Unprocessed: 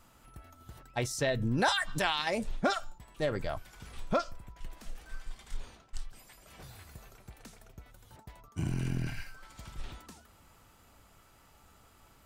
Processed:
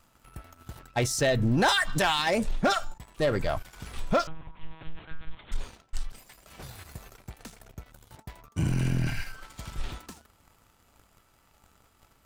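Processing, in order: waveshaping leveller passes 2; 4.27–5.52 s: monotone LPC vocoder at 8 kHz 160 Hz

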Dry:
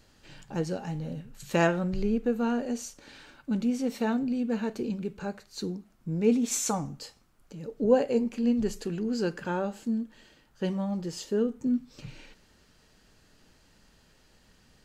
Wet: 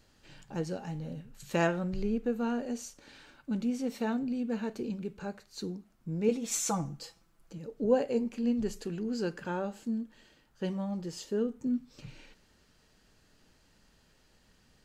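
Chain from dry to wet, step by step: 6.28–7.58 s: comb 6 ms, depth 68%; trim -4 dB

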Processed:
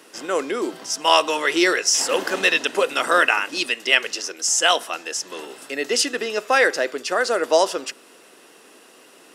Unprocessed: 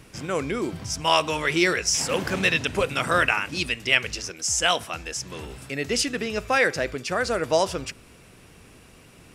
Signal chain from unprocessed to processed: high-pass 300 Hz 24 dB/octave; band-stop 2.3 kHz, Q 7.4; trim +4.5 dB

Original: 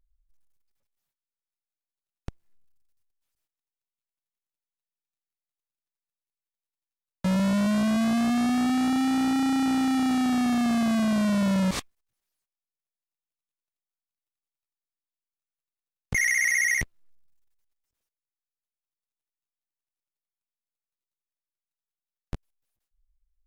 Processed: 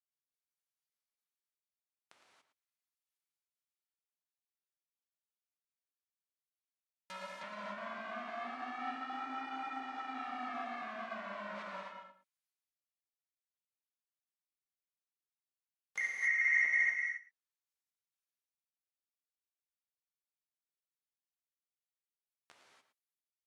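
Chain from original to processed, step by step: slices played last to first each 169 ms, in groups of 2; high-pass 1.1 kHz 12 dB/octave; low-pass that closes with the level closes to 1.4 kHz, closed at -35 dBFS; echo from a far wall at 19 m, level -11 dB; gated-style reverb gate 310 ms flat, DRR -3.5 dB; upward expansion 1.5:1, over -46 dBFS; trim -2.5 dB

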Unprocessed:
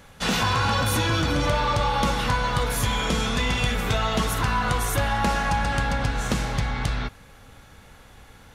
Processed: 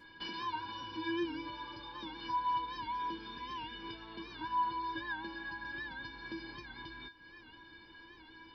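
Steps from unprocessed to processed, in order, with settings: resampled via 11.025 kHz; compression 6:1, threshold -36 dBFS, peak gain reduction 16.5 dB; feedback comb 330 Hz, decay 0.21 s, harmonics odd, mix 100%; warped record 78 rpm, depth 100 cents; trim +13 dB

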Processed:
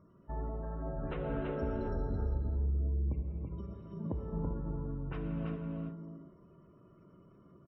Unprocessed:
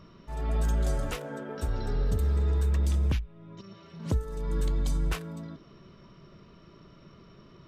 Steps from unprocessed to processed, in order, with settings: high-pass 140 Hz 6 dB/octave; gate -47 dBFS, range -10 dB; low-pass 1.7 kHz 6 dB/octave; spectral gate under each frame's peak -25 dB strong; tilt EQ -1.5 dB/octave; compression, threshold -35 dBFS, peak gain reduction 12 dB; delay 332 ms -4 dB; gated-style reverb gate 430 ms flat, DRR 2.5 dB

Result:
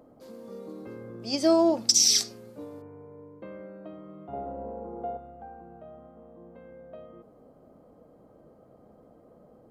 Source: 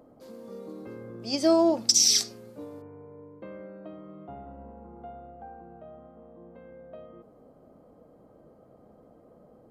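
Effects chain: 4.33–5.17 s: peaking EQ 500 Hz +12.5 dB 1.6 oct

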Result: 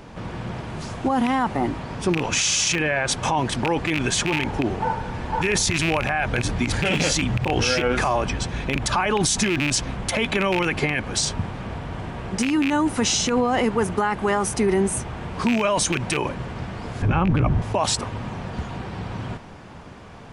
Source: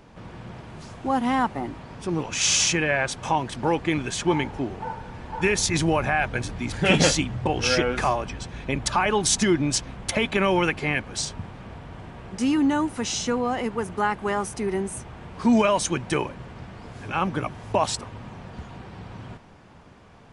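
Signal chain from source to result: rattle on loud lows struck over -24 dBFS, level -10 dBFS; in parallel at +0.5 dB: compressor with a negative ratio -26 dBFS, ratio -0.5; 17.02–17.62 s: on the sum: RIAA curve playback; peak limiter -11.5 dBFS, peak gain reduction 10.5 dB

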